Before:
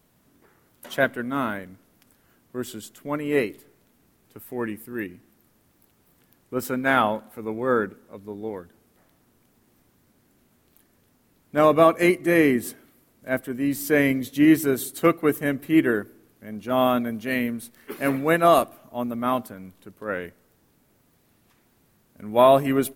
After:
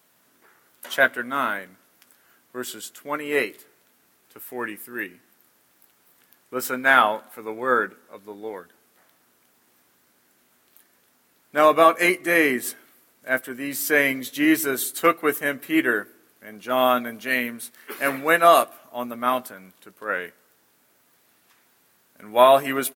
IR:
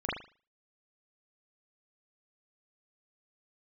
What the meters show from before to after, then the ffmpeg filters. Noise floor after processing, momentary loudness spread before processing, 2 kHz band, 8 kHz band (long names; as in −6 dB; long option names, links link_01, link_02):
−63 dBFS, 18 LU, +6.0 dB, +5.0 dB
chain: -filter_complex "[0:a]highpass=frequency=900:poles=1,equalizer=frequency=1500:width=2.8:gain=2.5,asplit=2[link_01][link_02];[link_02]adelay=16,volume=-12dB[link_03];[link_01][link_03]amix=inputs=2:normalize=0,volume=5dB"